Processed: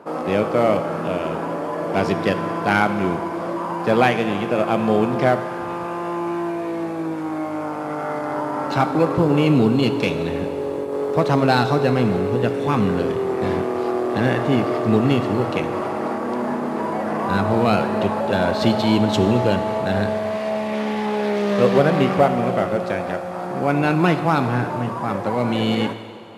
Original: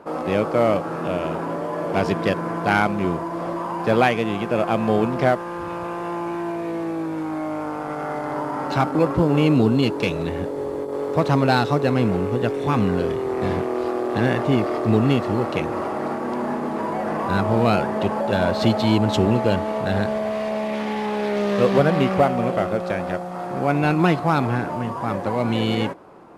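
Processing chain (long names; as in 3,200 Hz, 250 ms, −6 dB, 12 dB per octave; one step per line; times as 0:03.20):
high-pass filter 93 Hz
dense smooth reverb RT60 2.3 s, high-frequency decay 1×, DRR 9 dB
level +1 dB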